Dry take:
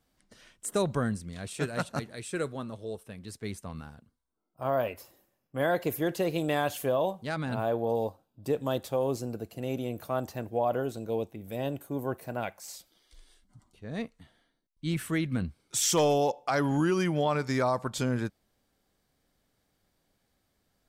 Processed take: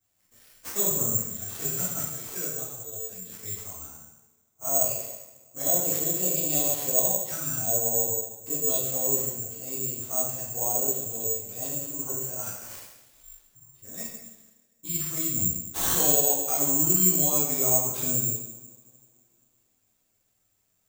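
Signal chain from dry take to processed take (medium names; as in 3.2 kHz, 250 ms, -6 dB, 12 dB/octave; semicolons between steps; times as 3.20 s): touch-sensitive flanger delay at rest 9.6 ms, full sweep at -26 dBFS; two-slope reverb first 0.94 s, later 2.8 s, from -23 dB, DRR -9.5 dB; careless resampling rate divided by 6×, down none, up zero stuff; trim -12.5 dB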